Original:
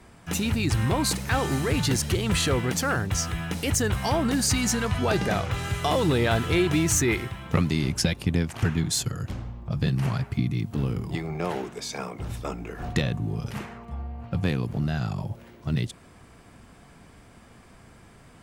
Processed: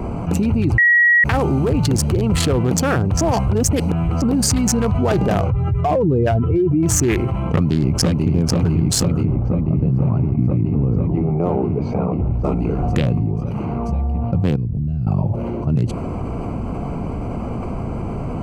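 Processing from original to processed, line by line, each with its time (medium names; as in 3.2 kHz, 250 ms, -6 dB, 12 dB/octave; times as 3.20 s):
0.78–1.24 s: bleep 1.91 kHz -9 dBFS
3.21–4.22 s: reverse
5.50–6.83 s: spectral contrast enhancement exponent 1.8
7.44–8.32 s: echo throw 490 ms, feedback 85%, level -4 dB
9.25–12.44 s: tape spacing loss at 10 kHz 35 dB
13.11–13.87 s: dip -13.5 dB, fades 0.25 s
14.56–15.07 s: amplifier tone stack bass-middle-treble 10-0-1
whole clip: local Wiener filter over 25 samples; peaking EQ 3.8 kHz -5.5 dB 0.37 oct; level flattener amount 70%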